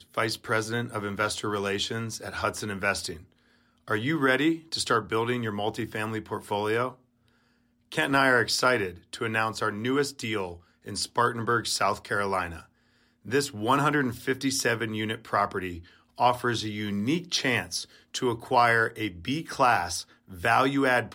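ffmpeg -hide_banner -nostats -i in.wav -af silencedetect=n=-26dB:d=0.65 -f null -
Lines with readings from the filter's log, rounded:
silence_start: 3.11
silence_end: 3.91 | silence_duration: 0.80
silence_start: 6.88
silence_end: 7.92 | silence_duration: 1.04
silence_start: 12.47
silence_end: 13.33 | silence_duration: 0.86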